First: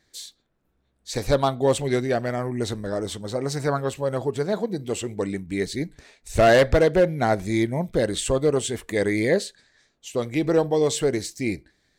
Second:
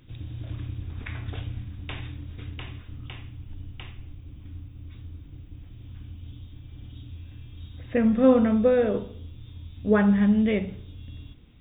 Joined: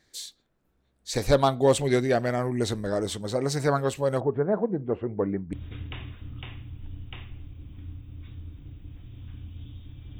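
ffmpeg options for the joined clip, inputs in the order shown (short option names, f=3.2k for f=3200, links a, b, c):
-filter_complex "[0:a]asettb=1/sr,asplit=3[a][b][c];[a]atrim=end=4.204[d];[b]atrim=start=4.2:end=5.53,asetpts=PTS-STARTPTS,afade=t=in:d=0.004:c=qsin,afade=t=out:st=1.326:d=0.004:c=qsin,lowpass=f=1.5k:w=0.5412,lowpass=f=1.5k:w=1.3066[e];[c]atrim=start=5.526[f];[d][e]acrossfade=d=0.004:c1=hsin:c2=qsin[g];[g][f]acrossfade=d=0.004:c1=qsin:c2=hsin,apad=whole_dur=10.19,atrim=end=10.19,atrim=end=5.532[h];[1:a]atrim=start=2.198:end=6.86[i];[h][i]acrossfade=d=0.004:c1=hsin:c2=hsin"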